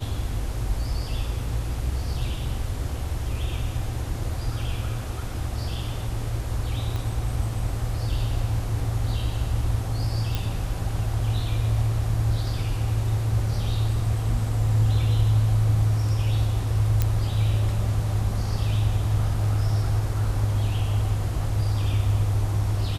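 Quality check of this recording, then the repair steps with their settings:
6.96 pop -18 dBFS
10.35 pop
17.02 pop -9 dBFS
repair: de-click

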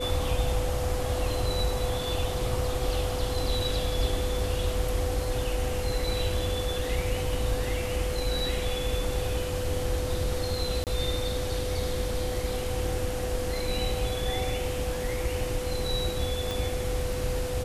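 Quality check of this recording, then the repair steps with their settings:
tone 500 Hz -32 dBFS
10.84–10.87 gap 28 ms
16.51 pop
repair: de-click; notch 500 Hz, Q 30; interpolate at 10.84, 28 ms

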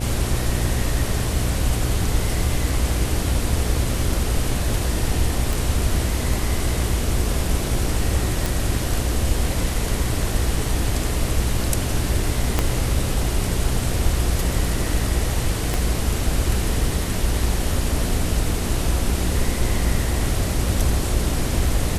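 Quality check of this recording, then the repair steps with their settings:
buzz 60 Hz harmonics 12 -26 dBFS
5.53 pop
8.46 pop
12.59 pop -4 dBFS
15.74 pop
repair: de-click; de-hum 60 Hz, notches 12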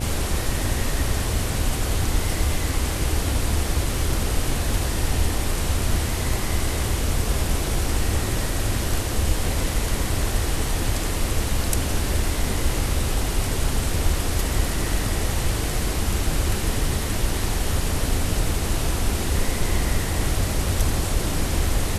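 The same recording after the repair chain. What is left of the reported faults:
12.59 pop
15.74 pop

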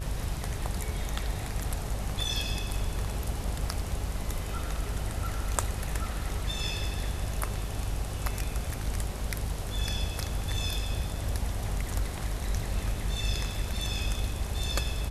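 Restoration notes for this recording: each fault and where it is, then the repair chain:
buzz 50 Hz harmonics 28 -35 dBFS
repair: de-hum 50 Hz, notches 28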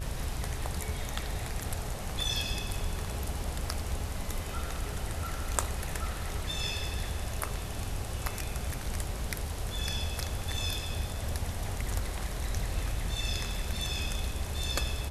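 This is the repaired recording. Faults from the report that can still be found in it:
none

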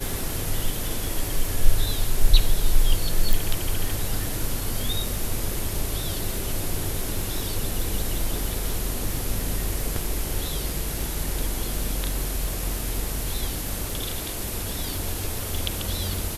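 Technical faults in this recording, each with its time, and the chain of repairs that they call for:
crackle 39/s -30 dBFS
3.33 pop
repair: de-click

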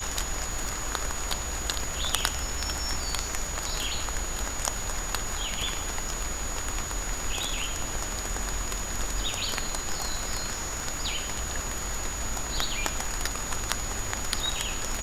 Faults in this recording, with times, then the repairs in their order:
crackle 42/s -35 dBFS
tone 6800 Hz -35 dBFS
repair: de-click; notch 6800 Hz, Q 30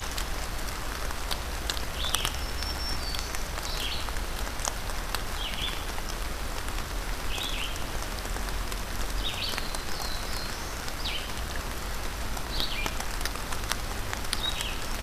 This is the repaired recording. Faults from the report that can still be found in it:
none

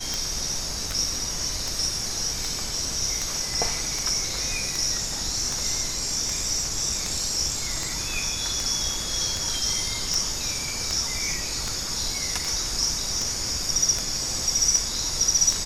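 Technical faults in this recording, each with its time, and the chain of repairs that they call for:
tick 78 rpm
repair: de-click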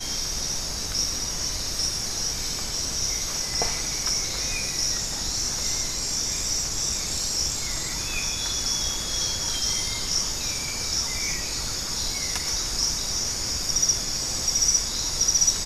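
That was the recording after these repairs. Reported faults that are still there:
none

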